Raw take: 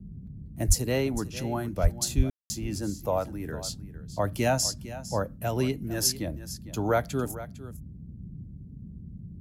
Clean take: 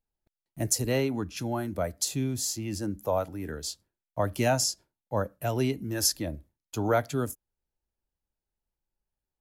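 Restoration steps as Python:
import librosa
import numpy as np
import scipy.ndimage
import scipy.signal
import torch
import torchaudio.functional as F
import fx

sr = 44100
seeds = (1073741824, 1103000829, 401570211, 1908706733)

y = fx.highpass(x, sr, hz=140.0, slope=24, at=(0.67, 0.79), fade=0.02)
y = fx.highpass(y, sr, hz=140.0, slope=24, at=(1.82, 1.94), fade=0.02)
y = fx.highpass(y, sr, hz=140.0, slope=24, at=(2.16, 2.28), fade=0.02)
y = fx.fix_ambience(y, sr, seeds[0], print_start_s=8.44, print_end_s=8.94, start_s=2.3, end_s=2.5)
y = fx.noise_reduce(y, sr, print_start_s=8.44, print_end_s=8.94, reduce_db=30.0)
y = fx.fix_echo_inverse(y, sr, delay_ms=454, level_db=-15.0)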